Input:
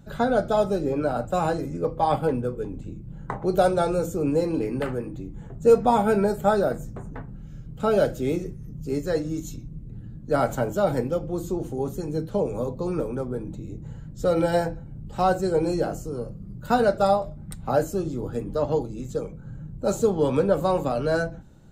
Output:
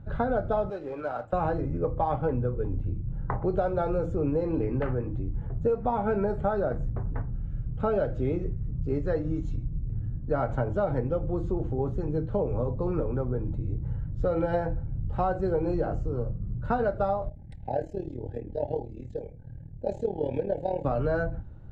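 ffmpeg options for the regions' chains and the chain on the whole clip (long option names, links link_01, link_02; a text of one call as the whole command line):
ffmpeg -i in.wav -filter_complex "[0:a]asettb=1/sr,asplit=3[link_01][link_02][link_03];[link_01]atrim=end=0.704[link_04];[link_02]atrim=start=0.7:end=1.33,asetpts=PTS-STARTPTS,afade=type=in:duration=0.004:curve=qsin,afade=type=out:start_time=0.626:duration=0.004:curve=qsin,highpass=frequency=1100:poles=1,acrusher=bits=4:mode=log:mix=0:aa=0.000001[link_05];[link_03]atrim=start=1.326[link_06];[link_04][link_05]acrossfade=duration=0.004:curve1=hsin:curve2=qsin[link_07];[link_07][link_06]acrossfade=duration=0.004:curve1=qsin:curve2=hsin,asettb=1/sr,asplit=3[link_08][link_09][link_10];[link_08]atrim=end=17.294[link_11];[link_09]atrim=start=17.29:end=20.85,asetpts=PTS-STARTPTS,afade=type=in:duration=0.004:curve=qsin,afade=type=out:start_time=3.556:duration=0.004:curve=qsin,lowshelf=frequency=230:gain=-10,tremolo=f=38:d=0.788,asuperstop=centerf=1200:order=8:qfactor=1.6[link_12];[link_10]atrim=start=20.846[link_13];[link_11][link_12]acrossfade=duration=0.004:curve1=hsin:curve2=qsin[link_14];[link_14][link_13]acrossfade=duration=0.004:curve1=qsin:curve2=hsin,lowpass=1800,lowshelf=frequency=130:width_type=q:width=1.5:gain=8.5,acompressor=threshold=-22dB:ratio=12" out.wav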